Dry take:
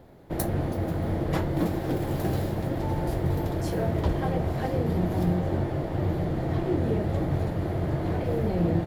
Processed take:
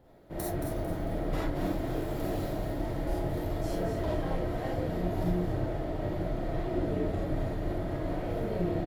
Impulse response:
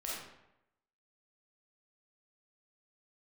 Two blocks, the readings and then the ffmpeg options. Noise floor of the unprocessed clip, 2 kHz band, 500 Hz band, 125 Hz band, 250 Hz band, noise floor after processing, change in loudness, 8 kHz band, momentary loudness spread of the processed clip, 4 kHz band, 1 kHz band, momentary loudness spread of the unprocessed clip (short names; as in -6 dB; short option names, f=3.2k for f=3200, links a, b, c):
-32 dBFS, -4.0 dB, -3.5 dB, -8.0 dB, -5.5 dB, -35 dBFS, -5.5 dB, -4.5 dB, 3 LU, -4.0 dB, -4.5 dB, 3 LU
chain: -filter_complex "[0:a]asplit=5[a][b][c][d][e];[b]adelay=224,afreqshift=-54,volume=-7dB[f];[c]adelay=448,afreqshift=-108,volume=-15.6dB[g];[d]adelay=672,afreqshift=-162,volume=-24.3dB[h];[e]adelay=896,afreqshift=-216,volume=-32.9dB[i];[a][f][g][h][i]amix=inputs=5:normalize=0[j];[1:a]atrim=start_sample=2205,atrim=end_sample=4410[k];[j][k]afir=irnorm=-1:irlink=0,volume=-5dB"